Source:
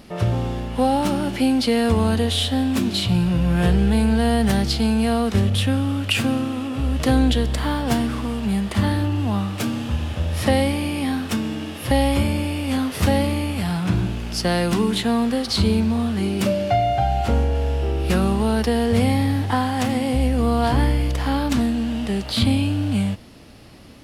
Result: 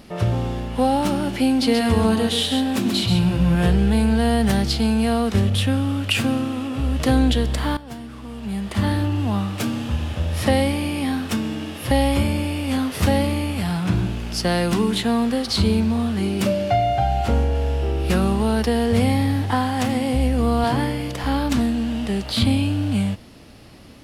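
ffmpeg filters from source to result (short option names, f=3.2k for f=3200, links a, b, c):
-filter_complex "[0:a]asettb=1/sr,asplit=3[a][b][c];[a]atrim=end=1.494[d];[b]atrim=start=1.49:end=3.55,asetpts=PTS-STARTPTS,afade=t=in:d=0.004:c=qsin,afade=t=out:st=2.056:d=0.004:c=qsin,aecho=1:1:132:0.531,atrim=end_sample=90846[e];[c]atrim=start=3.546[f];[d][e]acrossfade=d=0.004:c1=hsin:c2=qsin[g];[g][f]acrossfade=d=0.004:c1=qsin:c2=hsin,asettb=1/sr,asplit=3[h][i][j];[h]atrim=end=20.644[k];[i]atrim=start=20.64:end=21.24,asetpts=PTS-STARTPTS,afade=t=in:d=0.004:c=qsin,afade=t=out:st=0.596:d=0.004:c=qsin,highpass=f=100:w=0.5412,highpass=f=100:w=1.3066[l];[j]atrim=start=21.236[m];[k][l]acrossfade=d=0.004:c1=hsin:c2=qsin[n];[n][m]acrossfade=d=0.004:c1=qsin:c2=hsin,asplit=2[o][p];[o]atrim=end=7.77,asetpts=PTS-STARTPTS,afade=t=out:st=7.766:d=0.004:c=hsin:silence=0.16788[q];[p]atrim=start=7.77,asetpts=PTS-STARTPTS,afade=t=in:d=1.13:c=qua:silence=0.16788[r];[q][r]concat=n=2:v=0:a=1"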